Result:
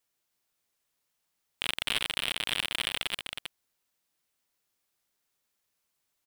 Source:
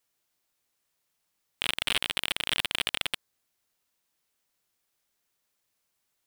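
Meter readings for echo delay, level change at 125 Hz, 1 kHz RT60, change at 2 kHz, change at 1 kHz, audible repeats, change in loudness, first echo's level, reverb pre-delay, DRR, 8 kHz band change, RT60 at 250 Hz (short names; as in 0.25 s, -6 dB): 0.318 s, -1.5 dB, none, -1.5 dB, -1.5 dB, 1, -2.0 dB, -6.5 dB, none, none, -1.5 dB, none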